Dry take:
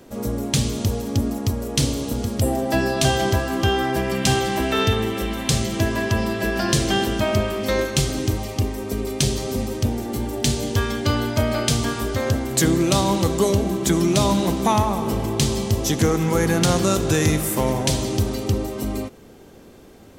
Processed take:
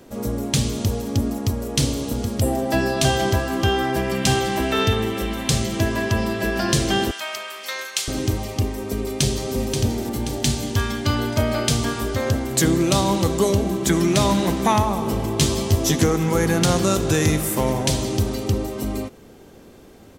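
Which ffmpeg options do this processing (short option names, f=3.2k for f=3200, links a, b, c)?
-filter_complex "[0:a]asettb=1/sr,asplit=3[a][b][c];[a]atrim=end=7.114[d];[b]atrim=start=7.11:end=8.08,asetpts=PTS-STARTPTS,afade=t=in:d=0.004:c=qsin,afade=t=out:st=0.966:d=0.004:c=qsin,highpass=1.3k[e];[c]atrim=start=8.076[f];[d][e]acrossfade=d=0.004:c1=hsin:c2=qsin[g];[g][f]acrossfade=d=0.004:c1=qsin:c2=hsin,asplit=2[h][i];[i]afade=t=in:st=9.02:d=0.01,afade=t=out:st=9.56:d=0.01,aecho=0:1:530|1060|1590|2120|2650|3180:0.501187|0.250594|0.125297|0.0626484|0.0313242|0.0156621[j];[h][j]amix=inputs=2:normalize=0,asettb=1/sr,asplit=3[k][l][m];[k]atrim=end=10.434[n];[l]atrim=start=10.43:end=11.19,asetpts=PTS-STARTPTS,afade=t=in:d=0.004:c=qsin,afade=t=out:st=0.756:d=0.004:c=qsin,equalizer=f=490:w=3:g=-7.5[o];[m]atrim=start=11.186[p];[n][o]acrossfade=d=0.004:c1=hsin:c2=qsin[q];[q][p]acrossfade=d=0.004:c1=qsin:c2=hsin,asettb=1/sr,asplit=3[r][s][t];[r]atrim=end=13.884[u];[s]atrim=start=13.88:end=14.79,asetpts=PTS-STARTPTS,afade=t=in:d=0.004:c=qsin,afade=t=out:st=0.906:d=0.004:c=qsin,equalizer=f=1.8k:t=o:w=0.77:g=5.5[v];[t]atrim=start=14.786[w];[u][v]acrossfade=d=0.004:c1=hsin:c2=qsin[x];[x][w]acrossfade=d=0.004:c1=qsin:c2=hsin,asettb=1/sr,asplit=3[y][z][aa];[y]atrim=end=15.374[ab];[z]atrim=start=15.37:end=16.04,asetpts=PTS-STARTPTS,afade=t=in:d=0.004:c=qsin,afade=t=out:st=0.666:d=0.004:c=qsin,asplit=2[ac][ad];[ad]adelay=12,volume=-2dB[ae];[ac][ae]amix=inputs=2:normalize=0,atrim=end_sample=29547[af];[aa]atrim=start=16.036[ag];[ab][af]acrossfade=d=0.004:c1=hsin:c2=qsin[ah];[ah][ag]acrossfade=d=0.004:c1=qsin:c2=hsin"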